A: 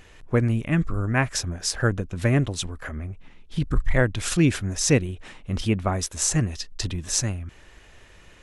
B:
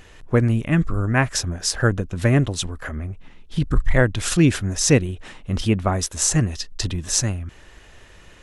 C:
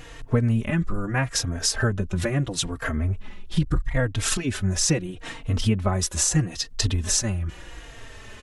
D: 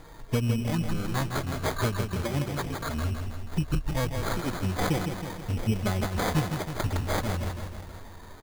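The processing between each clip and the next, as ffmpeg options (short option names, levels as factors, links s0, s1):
-af "equalizer=f=2300:t=o:w=0.21:g=-3,volume=1.5"
-filter_complex "[0:a]acompressor=threshold=0.0501:ratio=4,asplit=2[s0][s1];[s1]adelay=3.8,afreqshift=-0.77[s2];[s0][s2]amix=inputs=2:normalize=1,volume=2.51"
-filter_complex "[0:a]asplit=2[s0][s1];[s1]aecho=0:1:161|322|483|644|805|966|1127|1288:0.501|0.296|0.174|0.103|0.0607|0.0358|0.0211|0.0125[s2];[s0][s2]amix=inputs=2:normalize=0,acrusher=samples=16:mix=1:aa=0.000001,volume=0.531"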